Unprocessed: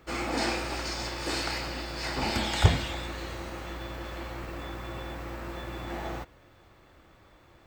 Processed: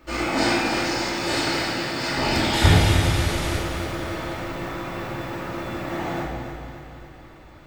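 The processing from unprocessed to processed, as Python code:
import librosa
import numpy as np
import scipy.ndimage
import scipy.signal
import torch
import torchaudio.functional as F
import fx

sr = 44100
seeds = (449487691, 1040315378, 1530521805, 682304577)

y = fx.delta_mod(x, sr, bps=64000, step_db=-29.5, at=(2.54, 3.57))
y = fx.echo_feedback(y, sr, ms=281, feedback_pct=55, wet_db=-8.0)
y = fx.room_shoebox(y, sr, seeds[0], volume_m3=690.0, walls='mixed', distance_m=2.6)
y = y * librosa.db_to_amplitude(1.5)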